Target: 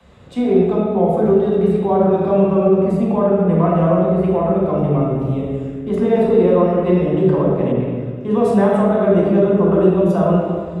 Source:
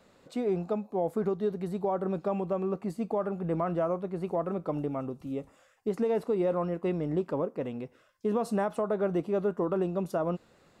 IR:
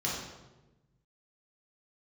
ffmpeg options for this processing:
-filter_complex "[0:a]acrossover=split=130|370|4300[a][b][c][d];[a]aeval=exprs='0.0126*sin(PI/2*2*val(0)/0.0126)':c=same[e];[e][b][c][d]amix=inputs=4:normalize=0[f];[1:a]atrim=start_sample=2205,asetrate=23373,aresample=44100[g];[f][g]afir=irnorm=-1:irlink=0,asettb=1/sr,asplit=3[h][i][j];[h]atrim=end=7.724[k];[i]atrim=start=7.72:end=8.31,asetpts=PTS-STARTPTS,afade=t=in:d=0.004:c=qsin,afade=t=out:st=0.586:d=0.004:c=qsin,adynamicequalizer=threshold=0.00501:dfrequency=2900:dqfactor=0.7:tfrequency=2900:tqfactor=0.7:attack=5:release=100:ratio=0.375:range=3:mode=cutabove:tftype=highshelf[l];[j]atrim=start=8.306[m];[k][l]acrossfade=d=0.004:c1=hsin:c2=qsin[n];[n][m]acrossfade=d=0.004:c1=qsin:c2=hsin,volume=1dB"

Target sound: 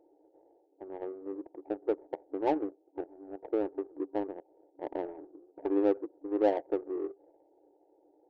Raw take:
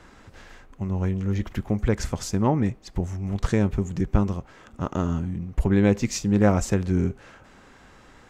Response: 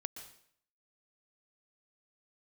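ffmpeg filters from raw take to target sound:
-af "afftfilt=real='re*between(b*sr/4096,280,940)':imag='im*between(b*sr/4096,280,940)':win_size=4096:overlap=0.75,adynamicsmooth=sensitivity=1.5:basefreq=520,volume=-3dB"

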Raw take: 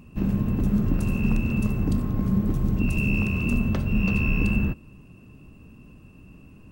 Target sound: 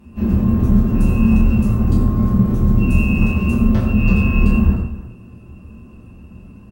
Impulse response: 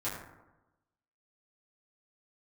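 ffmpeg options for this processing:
-filter_complex "[0:a]aecho=1:1:244|305:0.133|0.126[a];[1:a]atrim=start_sample=2205,atrim=end_sample=6174,asetrate=32634,aresample=44100[b];[a][b]afir=irnorm=-1:irlink=0"

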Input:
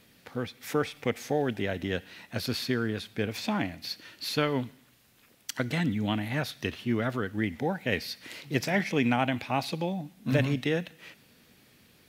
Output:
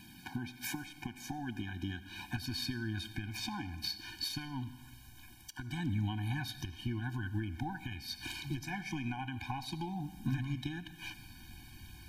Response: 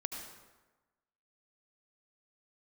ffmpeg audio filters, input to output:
-filter_complex "[0:a]acompressor=threshold=-37dB:ratio=6,asubboost=boost=11:cutoff=57,alimiter=level_in=8dB:limit=-24dB:level=0:latency=1:release=291,volume=-8dB,asplit=2[a][b];[1:a]atrim=start_sample=2205[c];[b][c]afir=irnorm=-1:irlink=0,volume=-9.5dB[d];[a][d]amix=inputs=2:normalize=0,afftfilt=real='re*eq(mod(floor(b*sr/1024/360),2),0)':imag='im*eq(mod(floor(b*sr/1024/360),2),0)':win_size=1024:overlap=0.75,volume=5.5dB"

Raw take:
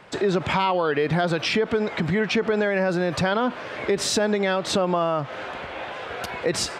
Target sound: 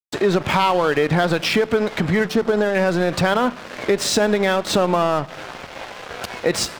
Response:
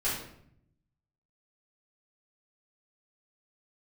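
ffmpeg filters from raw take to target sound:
-filter_complex "[0:a]asettb=1/sr,asplit=3[a][b][c];[a]atrim=end=2.244[d];[b]atrim=start=2.24:end=2.75,asetpts=PTS-STARTPTS,afade=t=in:d=0.004:c=qsin,afade=t=out:st=0.506:d=0.004:c=qsin,equalizer=f=2.3k:w=2.3:g=-15[e];[c]atrim=start=2.746[f];[d][e]acrossfade=d=0.004:c1=hsin:c2=qsin[g];[g][f]acrossfade=d=0.004:c1=qsin:c2=hsin,aeval=exprs='sgn(val(0))*max(abs(val(0))-0.0178,0)':c=same,asplit=2[h][i];[1:a]atrim=start_sample=2205,asetrate=29547,aresample=44100[j];[i][j]afir=irnorm=-1:irlink=0,volume=-29dB[k];[h][k]amix=inputs=2:normalize=0,volume=5.5dB"

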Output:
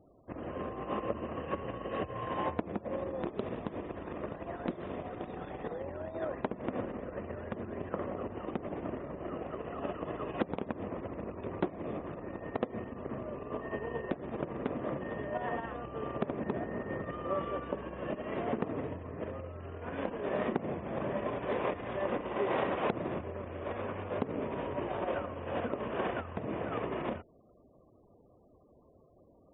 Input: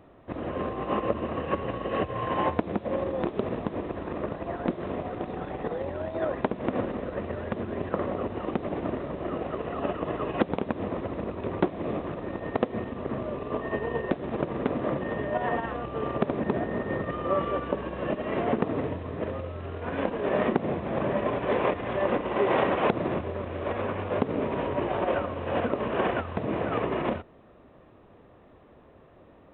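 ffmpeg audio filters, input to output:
-filter_complex "[0:a]asettb=1/sr,asplit=3[a][b][c];[a]atrim=end=3.394[d];[b]atrim=start=3.39:end=5.71,asetpts=PTS-STARTPTS,afade=t=in:d=0.004:c=qsin,afade=t=out:st=2.316:d=0.004:c=qsin,highshelf=f=3.5k:g=7.5[e];[c]atrim=start=5.706[f];[d][e]acrossfade=d=0.004:c1=hsin:c2=qsin[g];[g][f]acrossfade=d=0.004:c1=qsin:c2=hsin,afftfilt=real='re*gte(hypot(re,im),0.00355)':imag='im*gte(hypot(re,im),0.00355)':win_size=1024:overlap=0.75,volume=-7.5dB"

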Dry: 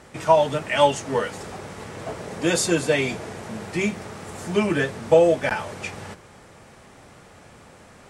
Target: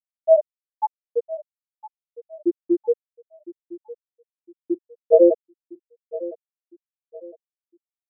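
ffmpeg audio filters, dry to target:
-af "afftfilt=real='re':imag='-im':win_size=2048:overlap=0.75,equalizer=f=310:t=o:w=1.4:g=4.5,aecho=1:1:6.2:0.38,afftfilt=real='re*gte(hypot(re,im),1.26)':imag='im*gte(hypot(re,im),1.26)':win_size=1024:overlap=0.75,aecho=1:1:1009|2018|3027:0.141|0.0466|0.0154,volume=3.5dB"

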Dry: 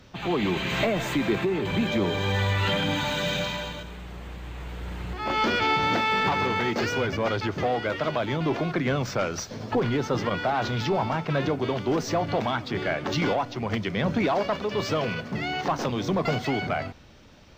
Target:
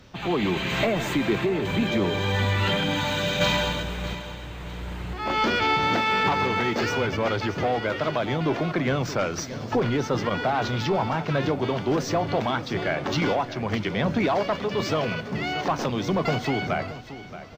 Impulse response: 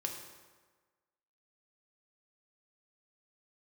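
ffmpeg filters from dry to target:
-filter_complex "[0:a]asplit=3[a][b][c];[a]afade=t=out:st=3.4:d=0.02[d];[b]acontrast=82,afade=t=in:st=3.4:d=0.02,afade=t=out:st=4.13:d=0.02[e];[c]afade=t=in:st=4.13:d=0.02[f];[d][e][f]amix=inputs=3:normalize=0,aecho=1:1:626|1252|1878:0.2|0.0619|0.0192,volume=1dB"

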